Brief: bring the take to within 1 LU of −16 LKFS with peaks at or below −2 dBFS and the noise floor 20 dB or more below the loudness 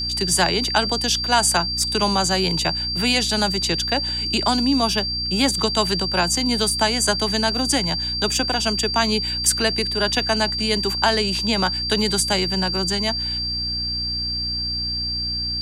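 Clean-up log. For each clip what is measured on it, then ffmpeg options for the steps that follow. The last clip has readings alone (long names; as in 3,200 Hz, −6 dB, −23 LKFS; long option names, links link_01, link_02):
mains hum 60 Hz; hum harmonics up to 300 Hz; level of the hum −30 dBFS; interfering tone 4,700 Hz; level of the tone −23 dBFS; integrated loudness −19.5 LKFS; sample peak −3.5 dBFS; target loudness −16.0 LKFS
→ -af "bandreject=frequency=60:width_type=h:width=6,bandreject=frequency=120:width_type=h:width=6,bandreject=frequency=180:width_type=h:width=6,bandreject=frequency=240:width_type=h:width=6,bandreject=frequency=300:width_type=h:width=6"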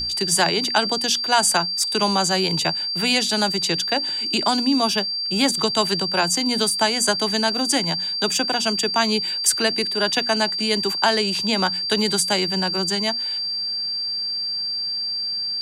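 mains hum none found; interfering tone 4,700 Hz; level of the tone −23 dBFS
→ -af "bandreject=frequency=4700:width=30"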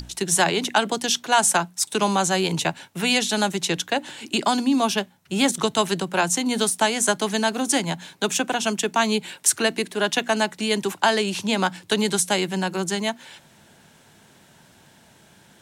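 interfering tone none found; integrated loudness −22.0 LKFS; sample peak −3.5 dBFS; target loudness −16.0 LKFS
→ -af "volume=6dB,alimiter=limit=-2dB:level=0:latency=1"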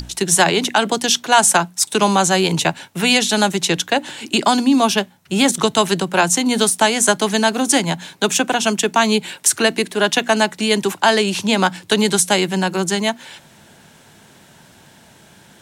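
integrated loudness −16.5 LKFS; sample peak −2.0 dBFS; background noise floor −48 dBFS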